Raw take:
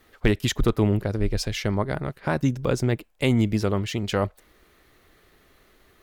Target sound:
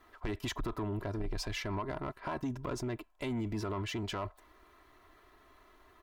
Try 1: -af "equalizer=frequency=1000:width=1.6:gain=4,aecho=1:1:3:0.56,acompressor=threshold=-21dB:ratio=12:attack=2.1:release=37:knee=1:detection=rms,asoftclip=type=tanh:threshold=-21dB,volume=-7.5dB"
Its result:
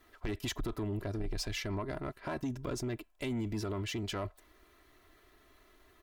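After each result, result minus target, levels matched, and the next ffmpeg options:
1,000 Hz band −4.0 dB; 8,000 Hz band +3.0 dB
-af "equalizer=frequency=1000:width=1.6:gain=12,aecho=1:1:3:0.56,acompressor=threshold=-21dB:ratio=12:attack=2.1:release=37:knee=1:detection=rms,asoftclip=type=tanh:threshold=-21dB,volume=-7.5dB"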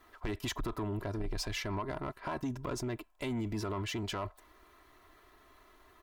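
8,000 Hz band +2.5 dB
-af "equalizer=frequency=1000:width=1.6:gain=12,aecho=1:1:3:0.56,acompressor=threshold=-21dB:ratio=12:attack=2.1:release=37:knee=1:detection=rms,highshelf=frequency=4800:gain=-5,asoftclip=type=tanh:threshold=-21dB,volume=-7.5dB"

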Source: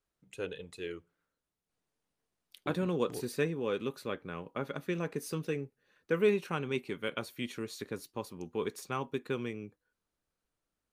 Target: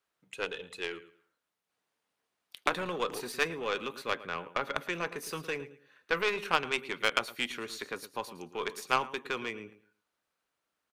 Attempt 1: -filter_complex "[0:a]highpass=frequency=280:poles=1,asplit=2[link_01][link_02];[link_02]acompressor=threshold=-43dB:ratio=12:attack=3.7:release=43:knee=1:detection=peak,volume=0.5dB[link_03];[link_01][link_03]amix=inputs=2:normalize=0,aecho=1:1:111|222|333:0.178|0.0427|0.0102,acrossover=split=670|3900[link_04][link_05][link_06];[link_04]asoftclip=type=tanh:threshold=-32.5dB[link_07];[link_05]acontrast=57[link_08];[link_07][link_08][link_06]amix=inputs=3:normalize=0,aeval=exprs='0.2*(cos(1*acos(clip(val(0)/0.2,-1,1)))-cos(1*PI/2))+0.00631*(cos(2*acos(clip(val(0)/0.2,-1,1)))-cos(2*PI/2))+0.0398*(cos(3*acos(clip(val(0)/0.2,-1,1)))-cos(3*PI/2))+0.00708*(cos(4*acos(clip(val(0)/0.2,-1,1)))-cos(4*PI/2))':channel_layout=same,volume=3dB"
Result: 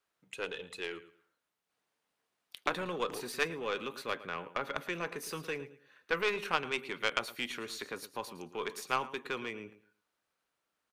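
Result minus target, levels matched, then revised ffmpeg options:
downward compressor: peak gain reduction +8 dB
-filter_complex "[0:a]highpass=frequency=280:poles=1,asplit=2[link_01][link_02];[link_02]acompressor=threshold=-34.5dB:ratio=12:attack=3.7:release=43:knee=1:detection=peak,volume=0.5dB[link_03];[link_01][link_03]amix=inputs=2:normalize=0,aecho=1:1:111|222|333:0.178|0.0427|0.0102,acrossover=split=670|3900[link_04][link_05][link_06];[link_04]asoftclip=type=tanh:threshold=-32.5dB[link_07];[link_05]acontrast=57[link_08];[link_07][link_08][link_06]amix=inputs=3:normalize=0,aeval=exprs='0.2*(cos(1*acos(clip(val(0)/0.2,-1,1)))-cos(1*PI/2))+0.00631*(cos(2*acos(clip(val(0)/0.2,-1,1)))-cos(2*PI/2))+0.0398*(cos(3*acos(clip(val(0)/0.2,-1,1)))-cos(3*PI/2))+0.00708*(cos(4*acos(clip(val(0)/0.2,-1,1)))-cos(4*PI/2))':channel_layout=same,volume=3dB"

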